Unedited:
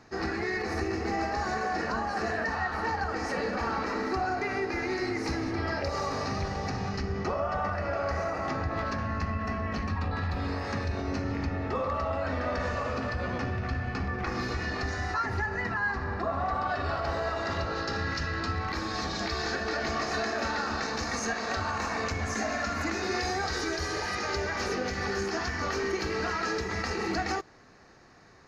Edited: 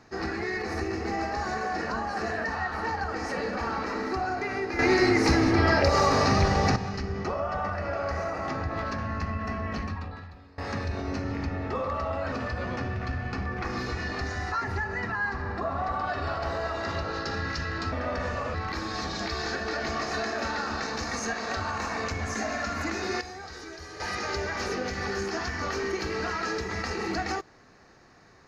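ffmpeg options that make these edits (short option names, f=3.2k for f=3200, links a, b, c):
-filter_complex "[0:a]asplit=9[a][b][c][d][e][f][g][h][i];[a]atrim=end=4.792[j];[b]atrim=start=4.788:end=6.762,asetpts=PTS-STARTPTS,volume=9.5dB[k];[c]atrim=start=6.758:end=10.58,asetpts=PTS-STARTPTS,afade=t=out:st=3.052:d=0.77:c=qua:silence=0.0707946[l];[d]atrim=start=10.58:end=12.322,asetpts=PTS-STARTPTS,afade=t=in:d=0.004:c=hsin:silence=0.0707946[m];[e]atrim=start=12.938:end=18.542[n];[f]atrim=start=12.318:end=12.942[o];[g]atrim=start=18.538:end=23.212[p];[h]atrim=start=23.208:end=24.002,asetpts=PTS-STARTPTS,volume=-10.5dB[q];[i]atrim=start=23.998[r];[j][k]acrossfade=d=0.004:c1=hsin:c2=hsin[s];[l][m]concat=n=2:v=0:a=1[t];[s][t]acrossfade=d=0.004:c1=hsin:c2=hsin[u];[u][n]acrossfade=d=0.004:c1=hsin:c2=hsin[v];[v][o]acrossfade=d=0.004:c1=hsin:c2=hsin[w];[w][p]acrossfade=d=0.004:c1=hsin:c2=hsin[x];[x][q]acrossfade=d=0.004:c1=hsin:c2=hsin[y];[y][r]acrossfade=d=0.004:c1=hsin:c2=hsin"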